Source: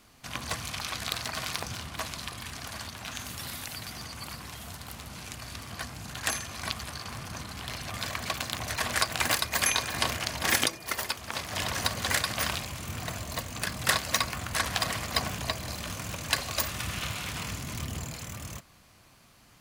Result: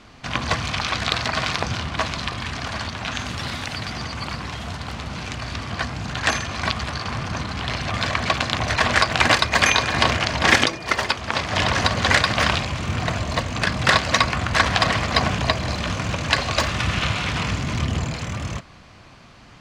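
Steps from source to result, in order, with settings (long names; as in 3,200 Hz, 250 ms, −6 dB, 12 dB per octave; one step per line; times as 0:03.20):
high-frequency loss of the air 130 metres
boost into a limiter +14 dB
level −1 dB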